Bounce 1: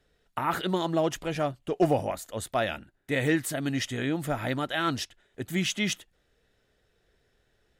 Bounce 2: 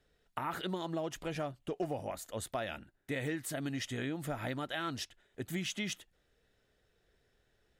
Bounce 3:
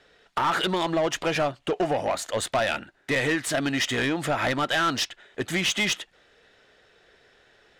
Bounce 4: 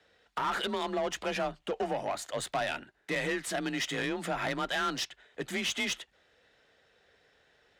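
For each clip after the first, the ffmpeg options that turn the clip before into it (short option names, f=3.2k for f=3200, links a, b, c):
-af "acompressor=threshold=-30dB:ratio=4,volume=-4dB"
-filter_complex "[0:a]asplit=2[a][b];[b]highpass=f=720:p=1,volume=20dB,asoftclip=type=tanh:threshold=-20dB[c];[a][c]amix=inputs=2:normalize=0,lowpass=f=8k:p=1,volume=-6dB,adynamicsmooth=sensitivity=6:basefreq=6.8k,volume=6dB"
-af "afreqshift=30,volume=-7.5dB"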